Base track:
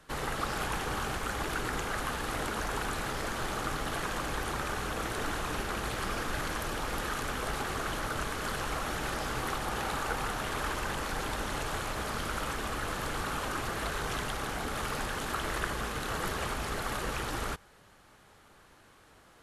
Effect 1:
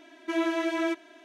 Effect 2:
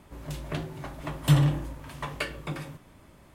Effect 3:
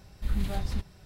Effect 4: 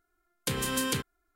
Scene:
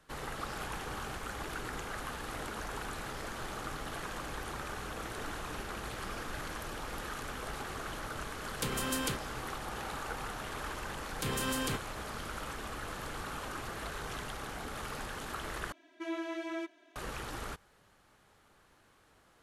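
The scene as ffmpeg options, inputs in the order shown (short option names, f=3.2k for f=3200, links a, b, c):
-filter_complex "[4:a]asplit=2[a][b];[0:a]volume=-6.5dB[c];[b]alimiter=limit=-23.5dB:level=0:latency=1:release=70[d];[c]asplit=2[e][f];[e]atrim=end=15.724[g];[1:a]atrim=end=1.24,asetpts=PTS-STARTPTS,volume=-10.5dB[h];[f]atrim=start=16.956[i];[a]atrim=end=1.35,asetpts=PTS-STARTPTS,volume=-5dB,afade=t=in:d=0.004:c=hsin,afade=t=out:st=1.346:d=0.004:c=hsin,adelay=8150[j];[d]atrim=end=1.35,asetpts=PTS-STARTPTS,volume=-1dB,afade=t=in:d=0.004:c=hsin,afade=t=out:st=1.346:d=0.004:c=hsin,adelay=10750[k];[g][h]acrossfade=d=0.004:c1=hsin:c2=hsin[l];[l][i]acrossfade=d=0.004:c1=hsin:c2=hsin[m];[m][j][k]amix=inputs=3:normalize=0"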